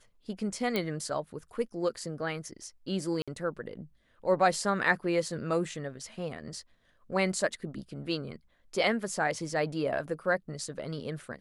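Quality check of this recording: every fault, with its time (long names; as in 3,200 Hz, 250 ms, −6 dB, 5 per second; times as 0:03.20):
0:00.76: click −16 dBFS
0:03.22–0:03.28: drop-out 56 ms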